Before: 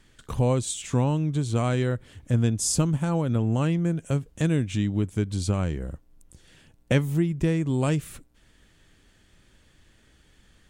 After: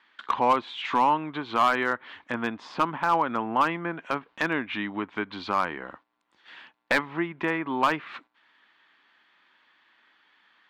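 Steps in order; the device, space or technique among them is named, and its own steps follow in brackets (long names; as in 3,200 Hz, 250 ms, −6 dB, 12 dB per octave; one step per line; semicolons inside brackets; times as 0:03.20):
octave-band graphic EQ 125/250/500/1,000/2,000/4,000/8,000 Hz −6/+4/−8/+12/+5/+9/−5 dB
treble cut that deepens with the level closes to 2,200 Hz, closed at −23 dBFS
walkie-talkie (band-pass filter 470–2,700 Hz; hard clipping −19 dBFS, distortion −15 dB; noise gate −55 dBFS, range −9 dB)
level +5 dB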